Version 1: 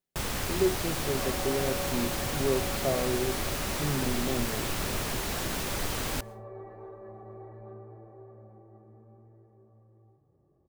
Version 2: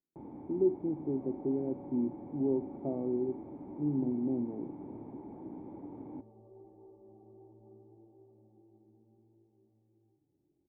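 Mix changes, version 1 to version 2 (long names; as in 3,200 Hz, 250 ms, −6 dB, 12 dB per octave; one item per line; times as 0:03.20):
speech +7.0 dB
first sound: add high-pass filter 130 Hz 12 dB per octave
master: add formant resonators in series u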